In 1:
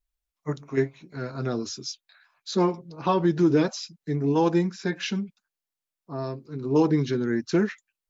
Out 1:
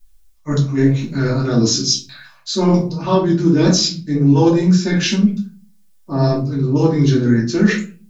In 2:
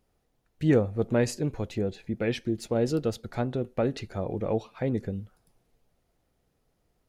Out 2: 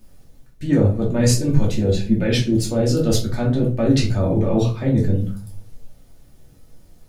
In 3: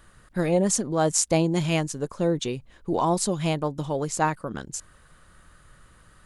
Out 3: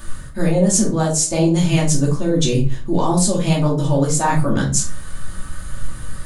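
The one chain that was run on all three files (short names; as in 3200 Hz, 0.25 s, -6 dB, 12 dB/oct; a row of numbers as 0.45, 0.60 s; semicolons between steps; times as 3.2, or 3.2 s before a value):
tone controls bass +6 dB, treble +8 dB; reverse; compressor 6:1, threshold -30 dBFS; reverse; flange 1.9 Hz, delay 4.2 ms, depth 8 ms, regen +72%; shoebox room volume 220 m³, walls furnished, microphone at 2.6 m; normalise peaks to -2 dBFS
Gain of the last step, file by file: +16.5, +14.0, +14.5 dB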